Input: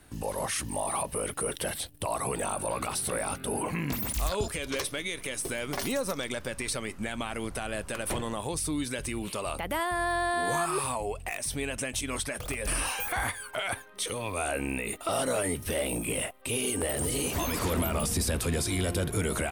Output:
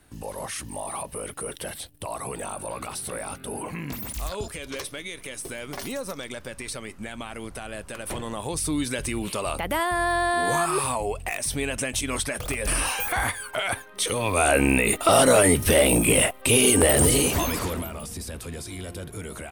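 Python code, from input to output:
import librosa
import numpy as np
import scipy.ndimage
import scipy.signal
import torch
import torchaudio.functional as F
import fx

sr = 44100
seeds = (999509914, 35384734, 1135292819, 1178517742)

y = fx.gain(x, sr, db=fx.line((7.99, -2.0), (8.74, 5.0), (13.86, 5.0), (14.58, 12.0), (17.04, 12.0), (17.57, 3.0), (17.96, -7.0)))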